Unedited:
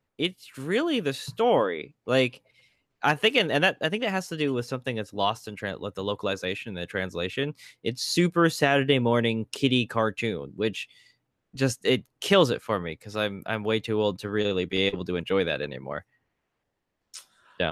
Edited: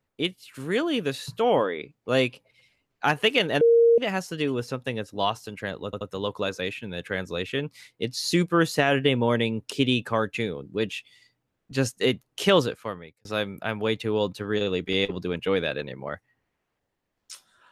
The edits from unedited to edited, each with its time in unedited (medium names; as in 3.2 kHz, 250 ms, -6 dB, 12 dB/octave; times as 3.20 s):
3.61–3.98 s: bleep 465 Hz -13.5 dBFS
5.85 s: stutter 0.08 s, 3 plays
12.39–13.09 s: fade out